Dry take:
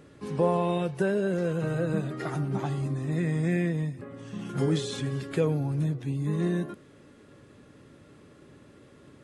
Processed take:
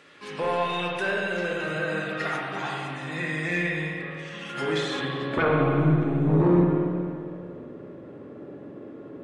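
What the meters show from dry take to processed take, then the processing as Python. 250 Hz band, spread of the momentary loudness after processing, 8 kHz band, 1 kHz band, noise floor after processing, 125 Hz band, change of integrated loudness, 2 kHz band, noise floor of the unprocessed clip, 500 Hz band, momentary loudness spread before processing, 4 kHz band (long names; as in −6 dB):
+3.0 dB, 20 LU, −1.5 dB, +7.0 dB, −43 dBFS, +1.0 dB, +3.0 dB, +12.0 dB, −54 dBFS, +2.5 dB, 9 LU, +7.5 dB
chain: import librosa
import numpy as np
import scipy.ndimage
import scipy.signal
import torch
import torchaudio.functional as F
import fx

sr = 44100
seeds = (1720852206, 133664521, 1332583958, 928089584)

y = fx.filter_sweep_bandpass(x, sr, from_hz=2600.0, to_hz=420.0, start_s=4.56, end_s=5.5, q=0.98)
y = fx.fold_sine(y, sr, drive_db=7, ceiling_db=-20.5)
y = fx.rev_spring(y, sr, rt60_s=2.3, pass_ms=(45, 57), chirp_ms=75, drr_db=-1.5)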